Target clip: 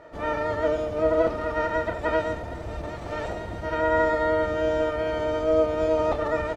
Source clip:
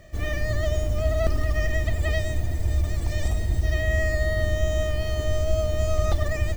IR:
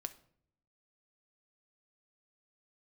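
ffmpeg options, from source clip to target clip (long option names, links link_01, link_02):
-filter_complex "[0:a]asplit=2[link_01][link_02];[1:a]atrim=start_sample=2205,adelay=30[link_03];[link_02][link_03]afir=irnorm=-1:irlink=0,volume=-6dB[link_04];[link_01][link_04]amix=inputs=2:normalize=0,asplit=4[link_05][link_06][link_07][link_08];[link_06]asetrate=22050,aresample=44100,atempo=2,volume=-3dB[link_09];[link_07]asetrate=33038,aresample=44100,atempo=1.33484,volume=-3dB[link_10];[link_08]asetrate=88200,aresample=44100,atempo=0.5,volume=-18dB[link_11];[link_05][link_09][link_10][link_11]amix=inputs=4:normalize=0,bandpass=frequency=760:width_type=q:width=0.96:csg=0,volume=5dB"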